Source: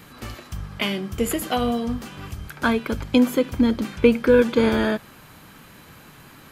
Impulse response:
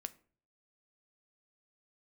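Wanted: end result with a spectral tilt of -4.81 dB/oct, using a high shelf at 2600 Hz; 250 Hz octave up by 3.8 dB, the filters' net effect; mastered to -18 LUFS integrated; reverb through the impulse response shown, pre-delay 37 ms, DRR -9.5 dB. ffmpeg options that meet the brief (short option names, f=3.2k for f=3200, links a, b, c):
-filter_complex "[0:a]equalizer=f=250:t=o:g=4,highshelf=f=2.6k:g=5.5,asplit=2[a][b];[1:a]atrim=start_sample=2205,adelay=37[c];[b][c]afir=irnorm=-1:irlink=0,volume=13dB[d];[a][d]amix=inputs=2:normalize=0,volume=-9dB"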